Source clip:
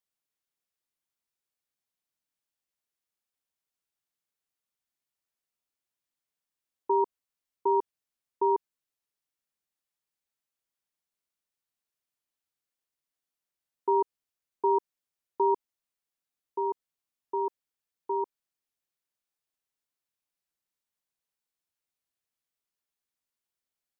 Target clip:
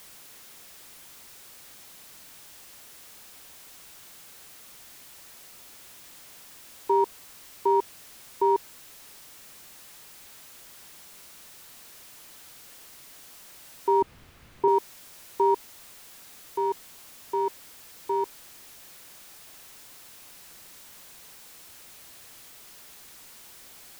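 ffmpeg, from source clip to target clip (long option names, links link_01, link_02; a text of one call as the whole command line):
ffmpeg -i in.wav -filter_complex "[0:a]aeval=exprs='val(0)+0.5*0.00668*sgn(val(0))':channel_layout=same,asettb=1/sr,asplit=3[link_01][link_02][link_03];[link_01]atrim=end=14.024[link_04];[link_02]atrim=start=14.02:end=14.68,asetpts=PTS-STARTPTS,afade=type=in:duration=0.004:curve=qsin,afade=type=out:start_time=0.656:duration=0.004:curve=qsin,bass=frequency=250:gain=14,treble=frequency=4000:gain=-14[link_05];[link_03]atrim=start=14.676[link_06];[link_04][link_05]acrossfade=duration=0.004:curve1=hsin:curve2=qsin[link_07];[link_07][link_06]acrossfade=duration=0.004:curve1=qsin:curve2=hsin,volume=2.5dB" out.wav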